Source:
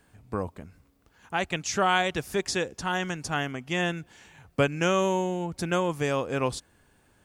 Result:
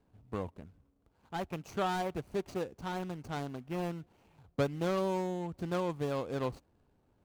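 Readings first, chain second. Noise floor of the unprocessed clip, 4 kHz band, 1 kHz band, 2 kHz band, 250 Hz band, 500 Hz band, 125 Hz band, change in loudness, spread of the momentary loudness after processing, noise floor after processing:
-65 dBFS, -14.0 dB, -9.0 dB, -15.5 dB, -6.0 dB, -7.0 dB, -6.0 dB, -8.5 dB, 10 LU, -73 dBFS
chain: median filter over 25 samples; gain -6 dB

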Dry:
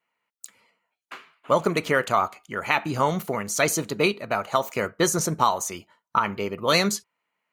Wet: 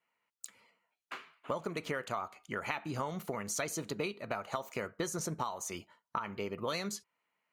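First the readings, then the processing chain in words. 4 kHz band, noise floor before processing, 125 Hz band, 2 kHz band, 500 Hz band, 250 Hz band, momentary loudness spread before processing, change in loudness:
-15.0 dB, -83 dBFS, -12.0 dB, -14.0 dB, -13.5 dB, -12.5 dB, 10 LU, -14.0 dB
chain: high shelf 11000 Hz -4.5 dB; compressor 6:1, threshold -30 dBFS, peak gain reduction 14.5 dB; gain -3.5 dB

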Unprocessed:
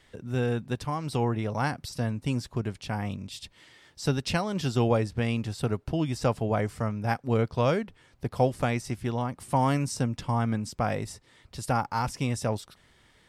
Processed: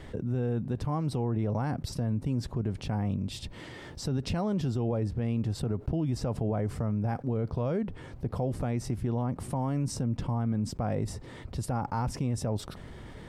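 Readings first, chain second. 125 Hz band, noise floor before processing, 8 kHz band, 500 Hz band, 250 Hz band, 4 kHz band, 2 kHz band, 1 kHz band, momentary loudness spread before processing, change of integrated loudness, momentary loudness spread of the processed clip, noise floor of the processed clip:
-0.5 dB, -61 dBFS, -4.0 dB, -5.0 dB, -1.0 dB, -5.5 dB, -11.0 dB, -7.5 dB, 10 LU, -2.5 dB, 8 LU, -46 dBFS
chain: tilt shelf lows +8.5 dB, about 1100 Hz; limiter -16.5 dBFS, peak gain reduction 11 dB; fast leveller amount 50%; gain -5.5 dB

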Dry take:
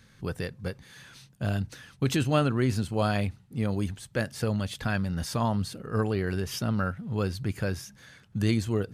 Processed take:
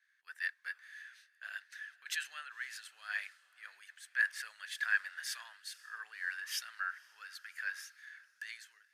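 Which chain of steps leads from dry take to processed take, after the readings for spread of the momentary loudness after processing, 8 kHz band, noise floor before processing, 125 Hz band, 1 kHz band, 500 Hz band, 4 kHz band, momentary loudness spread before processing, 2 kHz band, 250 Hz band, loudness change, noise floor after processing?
19 LU, -5.5 dB, -58 dBFS, under -40 dB, -15.5 dB, under -40 dB, -6.5 dB, 12 LU, +2.0 dB, under -40 dB, -10.0 dB, -73 dBFS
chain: ending faded out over 0.57 s; limiter -22.5 dBFS, peak gain reduction 10.5 dB; ladder high-pass 1600 Hz, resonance 75%; diffused feedback echo 0.532 s, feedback 48%, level -16 dB; three-band expander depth 70%; gain +4.5 dB

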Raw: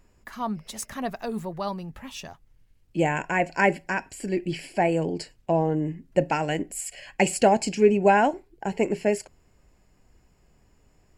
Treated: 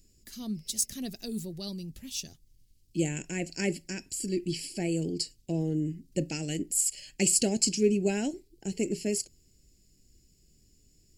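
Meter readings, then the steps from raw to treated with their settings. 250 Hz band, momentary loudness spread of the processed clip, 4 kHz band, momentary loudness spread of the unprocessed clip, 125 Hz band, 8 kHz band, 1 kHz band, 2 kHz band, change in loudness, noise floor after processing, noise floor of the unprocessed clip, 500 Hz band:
-3.0 dB, 13 LU, +2.5 dB, 14 LU, -3.0 dB, +7.0 dB, -23.0 dB, -13.0 dB, -5.0 dB, -64 dBFS, -62 dBFS, -9.0 dB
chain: EQ curve 350 Hz 0 dB, 1000 Hz -26 dB, 4700 Hz +10 dB; gain -3 dB

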